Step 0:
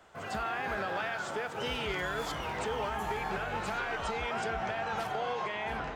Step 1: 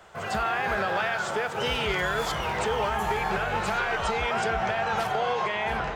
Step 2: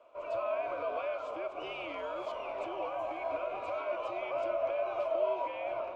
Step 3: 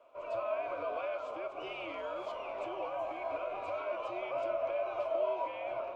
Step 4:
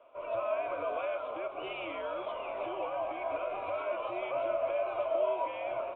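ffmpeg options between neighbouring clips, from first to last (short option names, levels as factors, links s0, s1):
-af "equalizer=f=280:t=o:w=0.22:g=-13.5,volume=2.37"
-filter_complex "[0:a]asplit=3[s0][s1][s2];[s0]bandpass=f=730:t=q:w=8,volume=1[s3];[s1]bandpass=f=1090:t=q:w=8,volume=0.501[s4];[s2]bandpass=f=2440:t=q:w=8,volume=0.355[s5];[s3][s4][s5]amix=inputs=3:normalize=0,afreqshift=-100"
-af "flanger=delay=7.1:depth=3.4:regen=76:speed=0.68:shape=triangular,volume=1.41"
-af "aresample=8000,aresample=44100,volume=1.33"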